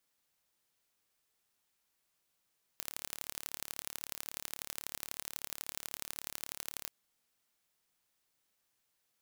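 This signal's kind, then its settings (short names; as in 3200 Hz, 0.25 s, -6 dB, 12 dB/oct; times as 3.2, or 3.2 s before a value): pulse train 36.3/s, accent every 3, -10.5 dBFS 4.10 s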